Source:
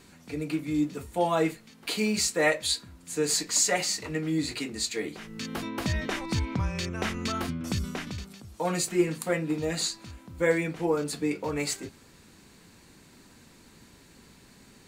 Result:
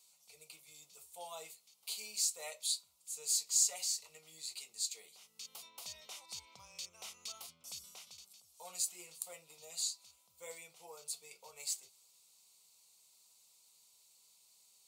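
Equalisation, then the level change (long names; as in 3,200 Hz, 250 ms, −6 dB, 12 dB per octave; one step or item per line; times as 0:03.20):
first difference
high-shelf EQ 7,300 Hz −5.5 dB
phaser with its sweep stopped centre 700 Hz, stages 4
−1.5 dB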